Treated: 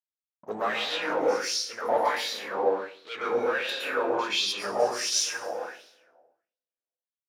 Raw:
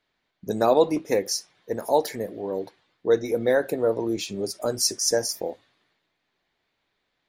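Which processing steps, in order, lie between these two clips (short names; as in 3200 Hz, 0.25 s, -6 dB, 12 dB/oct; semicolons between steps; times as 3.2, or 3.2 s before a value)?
high shelf 12000 Hz +8.5 dB; sample leveller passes 5; in parallel at -2 dB: limiter -14 dBFS, peak gain reduction 7 dB; on the sum: doubler 19 ms -11 dB; 5.09–5.5 hard clip -12 dBFS, distortion -17 dB; power-law curve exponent 1.4; reverb RT60 1.1 s, pre-delay 0.108 s, DRR -6 dB; wah 1.4 Hz 730–3900 Hz, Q 3.5; gain -9 dB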